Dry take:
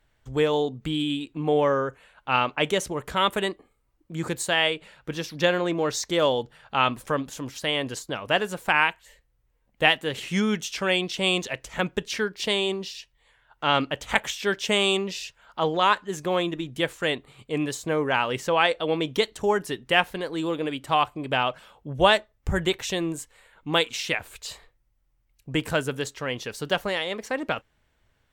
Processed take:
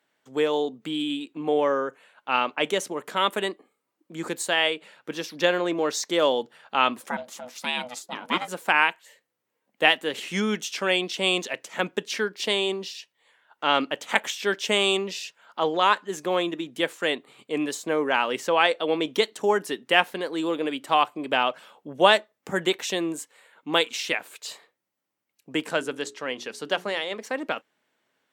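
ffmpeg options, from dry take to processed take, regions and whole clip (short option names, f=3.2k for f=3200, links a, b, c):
-filter_complex "[0:a]asettb=1/sr,asplit=3[a][b][c];[a]atrim=end=7.094[d];[b]atrim=start=7.09:end=8.48,asetpts=PTS-STARTPTS,afade=t=in:d=0.004:c=qsin,afade=t=out:st=1.386:d=0.004:c=qsin,lowshelf=f=190:g=-5,aeval=exprs='val(0)*sin(2*PI*370*n/s)':c=same[e];[c]atrim=start=8.476[f];[d][e]acrossfade=d=0.004:c1=hsin:c2=qsin[g];[g][f]acrossfade=d=0.004:c1=qsin:c2=hsin,asettb=1/sr,asplit=3[h][i][j];[h]atrim=end=25.654[k];[i]atrim=start=25.65:end=27.23,asetpts=PTS-STARTPTS,afade=t=in:d=0.004:c=qsin,afade=t=out:st=1.576:d=0.004:c=qsin,lowpass=10k,bandreject=f=60:t=h:w=6,bandreject=f=120:t=h:w=6,bandreject=f=180:t=h:w=6,bandreject=f=240:t=h:w=6,bandreject=f=300:t=h:w=6,bandreject=f=360:t=h:w=6,bandreject=f=420:t=h:w=6[l];[j]atrim=start=27.226[m];[k][l]acrossfade=d=0.004:c1=hsin:c2=qsin[n];[n][m]acrossfade=d=0.004:c1=qsin:c2=hsin,highpass=f=210:w=0.5412,highpass=f=210:w=1.3066,dynaudnorm=f=890:g=13:m=11.5dB,volume=-1dB"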